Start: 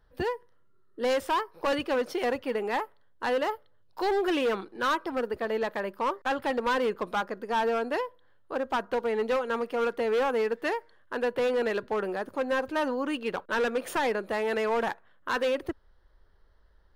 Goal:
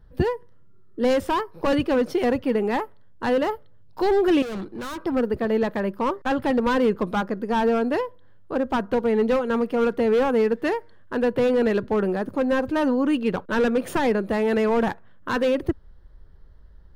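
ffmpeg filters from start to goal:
ffmpeg -i in.wav -filter_complex "[0:a]equalizer=frequency=170:width=0.62:gain=7,asettb=1/sr,asplit=3[link_01][link_02][link_03];[link_01]atrim=end=4.424[link_04];[link_02]atrim=start=4.42:end=5.04,asetpts=PTS-STARTPTS,afade=type=in:duration=0.004:curve=qsin,afade=type=out:start_time=0.616:duration=0.004:curve=qsin,volume=34.5dB,asoftclip=hard,volume=-34.5dB[link_05];[link_03]atrim=start=5.036[link_06];[link_04][link_05]acrossfade=duration=0.004:curve1=hsin:curve2=qsin[link_07];[link_07][link_06]acrossfade=duration=0.004:curve1=qsin:curve2=hsin,lowshelf=frequency=230:gain=11.5,volume=1.5dB" out.wav

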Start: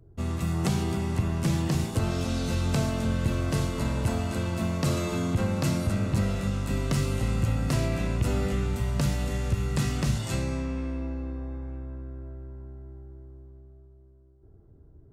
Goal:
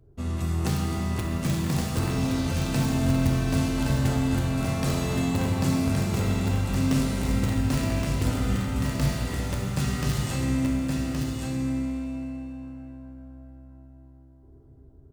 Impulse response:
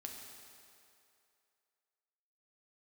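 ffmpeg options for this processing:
-filter_complex "[0:a]asplit=2[link_01][link_02];[link_02]aeval=exprs='(mod(7.08*val(0)+1,2)-1)/7.08':channel_layout=same,volume=-5dB[link_03];[link_01][link_03]amix=inputs=2:normalize=0,aecho=1:1:1120:0.596[link_04];[1:a]atrim=start_sample=2205[link_05];[link_04][link_05]afir=irnorm=-1:irlink=0"

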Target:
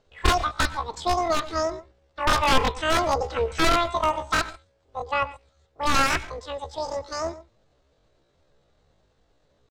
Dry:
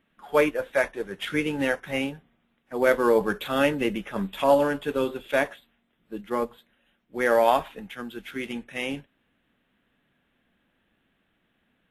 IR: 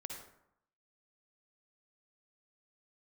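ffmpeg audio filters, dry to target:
-filter_complex "[0:a]acrossover=split=5800[link_01][link_02];[link_02]acompressor=threshold=-59dB:ratio=4:attack=1:release=60[link_03];[link_01][link_03]amix=inputs=2:normalize=0,aeval=exprs='(mod(5.31*val(0)+1,2)-1)/5.31':channel_layout=same,asetrate=104076,aresample=44100,aemphasis=mode=reproduction:type=bsi,asplit=2[link_04][link_05];[1:a]atrim=start_sample=2205,atrim=end_sample=3087,highshelf=frequency=7400:gain=-11[link_06];[link_05][link_06]afir=irnorm=-1:irlink=0,volume=-2dB[link_07];[link_04][link_07]amix=inputs=2:normalize=0,atempo=0.52"

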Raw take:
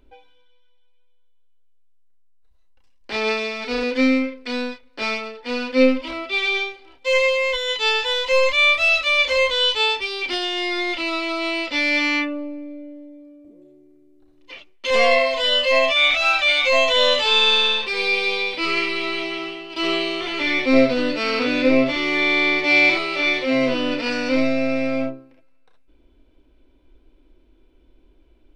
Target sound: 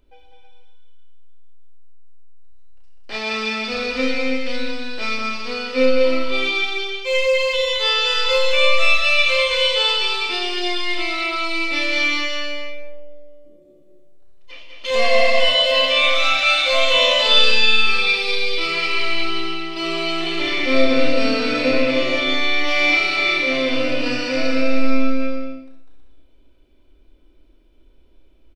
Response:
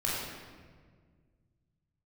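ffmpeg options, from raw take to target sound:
-filter_complex "[0:a]asplit=2[link_01][link_02];[link_02]adelay=31,volume=-11dB[link_03];[link_01][link_03]amix=inputs=2:normalize=0,aecho=1:1:200|320|392|435.2|461.1:0.631|0.398|0.251|0.158|0.1,asplit=2[link_04][link_05];[1:a]atrim=start_sample=2205,afade=type=out:start_time=0.33:duration=0.01,atrim=end_sample=14994,highshelf=frequency=3200:gain=11[link_06];[link_05][link_06]afir=irnorm=-1:irlink=0,volume=-10dB[link_07];[link_04][link_07]amix=inputs=2:normalize=0,volume=-6dB"

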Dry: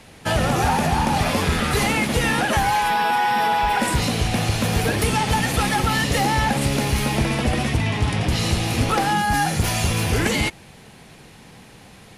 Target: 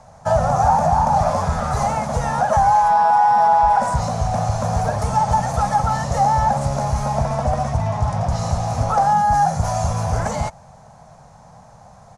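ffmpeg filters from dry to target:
ffmpeg -i in.wav -af "firequalizer=gain_entry='entry(150,0);entry(340,-20);entry(620,8);entry(1200,1);entry(1900,-13);entry(2800,-21);entry(6200,-2);entry(13000,-23)':delay=0.05:min_phase=1,volume=1dB" out.wav

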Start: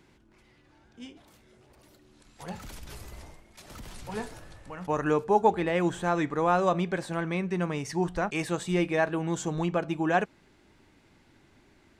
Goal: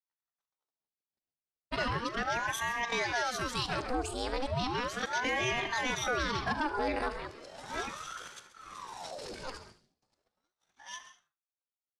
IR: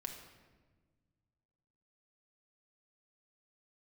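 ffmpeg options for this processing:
-filter_complex "[0:a]areverse,agate=range=-52dB:threshold=-54dB:ratio=16:detection=peak,asetrate=64194,aresample=44100,atempo=0.686977,asplit=2[link_01][link_02];[1:a]atrim=start_sample=2205,atrim=end_sample=3969,adelay=132[link_03];[link_02][link_03]afir=irnorm=-1:irlink=0,volume=-9.5dB[link_04];[link_01][link_04]amix=inputs=2:normalize=0,asoftclip=type=tanh:threshold=-18dB,lowpass=frequency=8700:width=0.5412,lowpass=frequency=8700:width=1.3066,aphaser=in_gain=1:out_gain=1:delay=1.5:decay=0.21:speed=1.3:type=sinusoidal,highshelf=frequency=6800:gain=5.5,aecho=1:1:41|75:0.141|0.141,alimiter=limit=-22dB:level=0:latency=1:release=47,equalizer=frequency=4700:width_type=o:width=0.2:gain=14.5,aeval=exprs='val(0)*sin(2*PI*790*n/s+790*0.8/0.36*sin(2*PI*0.36*n/s))':channel_layout=same"

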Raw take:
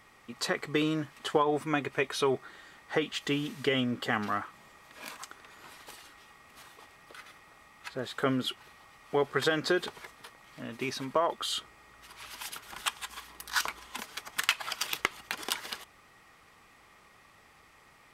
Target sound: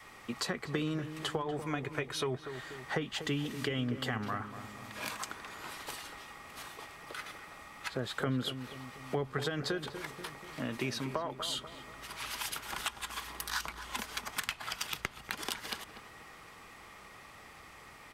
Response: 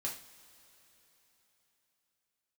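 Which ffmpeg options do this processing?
-filter_complex "[0:a]acrossover=split=190[link_01][link_02];[link_02]acompressor=threshold=-40dB:ratio=6[link_03];[link_01][link_03]amix=inputs=2:normalize=0,asplit=2[link_04][link_05];[link_05]adelay=242,lowpass=frequency=1300:poles=1,volume=-9dB,asplit=2[link_06][link_07];[link_07]adelay=242,lowpass=frequency=1300:poles=1,volume=0.52,asplit=2[link_08][link_09];[link_09]adelay=242,lowpass=frequency=1300:poles=1,volume=0.52,asplit=2[link_10][link_11];[link_11]adelay=242,lowpass=frequency=1300:poles=1,volume=0.52,asplit=2[link_12][link_13];[link_13]adelay=242,lowpass=frequency=1300:poles=1,volume=0.52,asplit=2[link_14][link_15];[link_15]adelay=242,lowpass=frequency=1300:poles=1,volume=0.52[link_16];[link_06][link_08][link_10][link_12][link_14][link_16]amix=inputs=6:normalize=0[link_17];[link_04][link_17]amix=inputs=2:normalize=0,adynamicequalizer=threshold=0.002:dfrequency=180:dqfactor=0.9:tfrequency=180:tqfactor=0.9:attack=5:release=100:ratio=0.375:range=3:mode=cutabove:tftype=bell,volume=6dB"

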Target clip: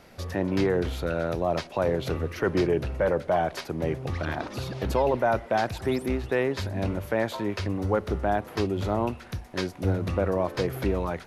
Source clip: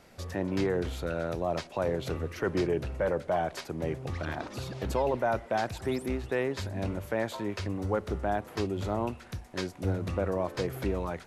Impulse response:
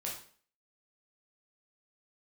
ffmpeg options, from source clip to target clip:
-af "equalizer=frequency=7700:width=2.3:gain=-5.5,volume=4.5dB"

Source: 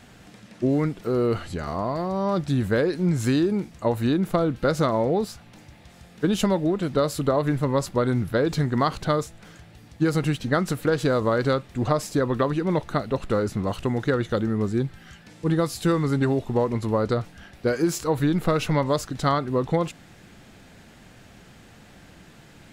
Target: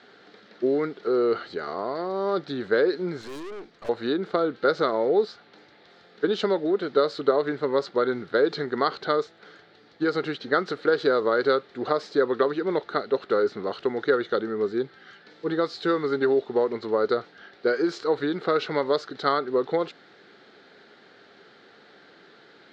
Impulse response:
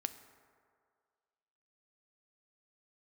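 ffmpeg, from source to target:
-filter_complex "[0:a]highpass=390,equalizer=frequency=410:width_type=q:width=4:gain=9,equalizer=frequency=640:width_type=q:width=4:gain=-3,equalizer=frequency=990:width_type=q:width=4:gain=-5,equalizer=frequency=1400:width_type=q:width=4:gain=5,equalizer=frequency=2600:width_type=q:width=4:gain=-8,equalizer=frequency=4200:width_type=q:width=4:gain=6,lowpass=frequency=4300:width=0.5412,lowpass=frequency=4300:width=1.3066,asettb=1/sr,asplit=3[link_01][link_02][link_03];[link_01]atrim=end=3.214[link_04];[link_02]atrim=start=3.21:end=3.89,asetpts=PTS-STARTPTS,afade=type=in:duration=0.004:curve=qsin,afade=type=out:start_time=0.676:duration=0.004:curve=qsin,aeval=exprs='(tanh(63.1*val(0)+0.55)-tanh(0.55))/63.1':channel_layout=same[link_05];[link_03]atrim=start=3.886[link_06];[link_04][link_05]acrossfade=duration=0.004:curve1=hsin:curve2=qsin[link_07];[link_07][link_06]acrossfade=duration=0.004:curve1=qsin:curve2=hsin"

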